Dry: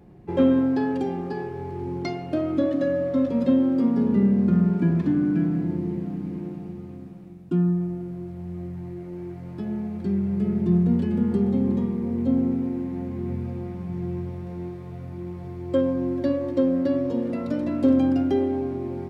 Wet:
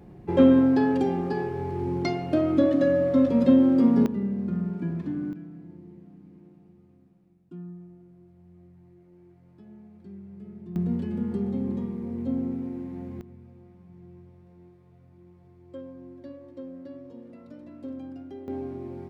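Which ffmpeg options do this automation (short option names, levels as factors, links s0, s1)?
-af "asetnsamples=n=441:p=0,asendcmd='4.06 volume volume -9dB;5.33 volume volume -19dB;10.76 volume volume -6.5dB;13.21 volume volume -19dB;18.48 volume volume -7dB',volume=1.26"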